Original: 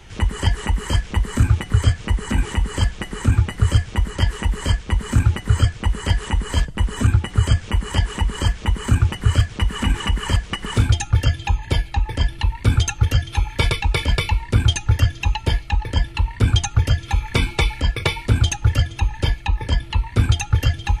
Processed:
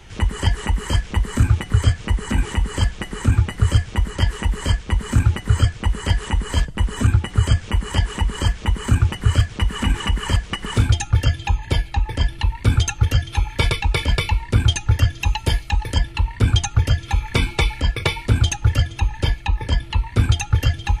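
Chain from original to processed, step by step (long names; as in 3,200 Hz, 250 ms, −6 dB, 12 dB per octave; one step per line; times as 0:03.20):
0:15.18–0:15.97: high-shelf EQ 8,800 Hz → 5,400 Hz +11.5 dB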